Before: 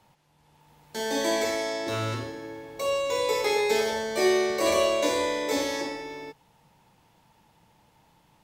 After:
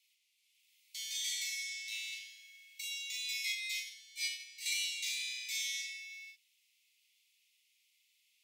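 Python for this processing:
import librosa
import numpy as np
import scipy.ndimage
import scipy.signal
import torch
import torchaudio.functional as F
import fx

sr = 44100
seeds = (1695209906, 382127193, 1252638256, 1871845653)

y = scipy.signal.sosfilt(scipy.signal.butter(16, 2100.0, 'highpass', fs=sr, output='sos'), x)
y = fx.doubler(y, sr, ms=39.0, db=-4.0)
y = fx.upward_expand(y, sr, threshold_db=-37.0, expansion=2.5, at=(3.52, 4.66))
y = F.gain(torch.from_numpy(y), -4.5).numpy()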